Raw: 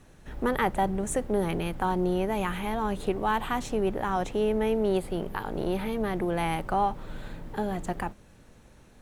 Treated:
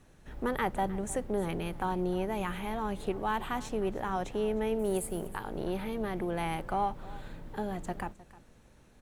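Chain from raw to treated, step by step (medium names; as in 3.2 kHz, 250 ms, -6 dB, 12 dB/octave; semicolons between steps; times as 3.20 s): 4.79–5.28 s: resonant high shelf 6 kHz +13 dB, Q 1.5; on a send: delay 309 ms -19 dB; on the sum: trim -5 dB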